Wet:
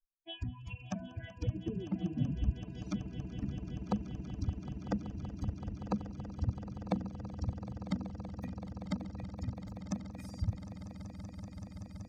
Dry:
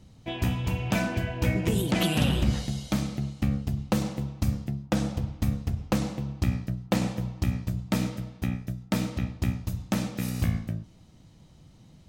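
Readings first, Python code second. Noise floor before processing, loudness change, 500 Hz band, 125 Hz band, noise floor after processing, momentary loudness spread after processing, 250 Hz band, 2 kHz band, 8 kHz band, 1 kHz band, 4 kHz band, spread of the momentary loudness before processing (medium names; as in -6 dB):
-54 dBFS, -11.0 dB, -12.0 dB, -10.0 dB, -51 dBFS, 9 LU, -10.0 dB, -18.5 dB, under -15 dB, -11.0 dB, -16.5 dB, 8 LU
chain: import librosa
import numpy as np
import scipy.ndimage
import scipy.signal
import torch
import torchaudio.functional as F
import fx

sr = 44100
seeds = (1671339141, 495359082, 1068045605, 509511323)

p1 = fx.bin_expand(x, sr, power=3.0)
p2 = fx.high_shelf(p1, sr, hz=3700.0, db=7.0)
p3 = fx.env_lowpass_down(p2, sr, base_hz=310.0, full_db=-30.0)
p4 = p3 + fx.echo_swell(p3, sr, ms=190, loudest=8, wet_db=-15.5, dry=0)
y = F.gain(torch.from_numpy(p4), -1.5).numpy()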